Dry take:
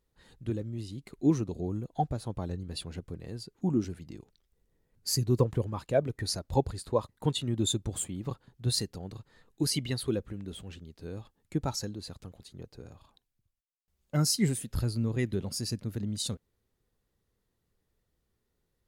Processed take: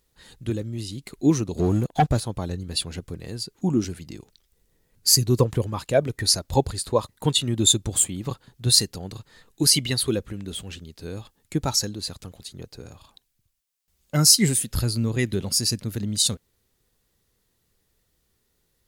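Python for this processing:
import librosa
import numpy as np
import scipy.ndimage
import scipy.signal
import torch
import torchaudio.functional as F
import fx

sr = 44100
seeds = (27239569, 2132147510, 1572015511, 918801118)

y = fx.high_shelf(x, sr, hz=2200.0, db=9.5)
y = fx.leveller(y, sr, passes=2, at=(1.57, 2.2))
y = y * librosa.db_to_amplitude(5.5)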